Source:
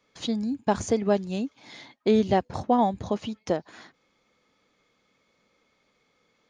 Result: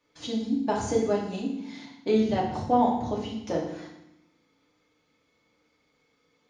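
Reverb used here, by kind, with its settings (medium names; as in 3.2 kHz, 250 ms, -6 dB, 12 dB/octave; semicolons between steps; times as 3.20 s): FDN reverb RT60 0.8 s, low-frequency decay 1.5×, high-frequency decay 0.95×, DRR -4 dB; trim -7 dB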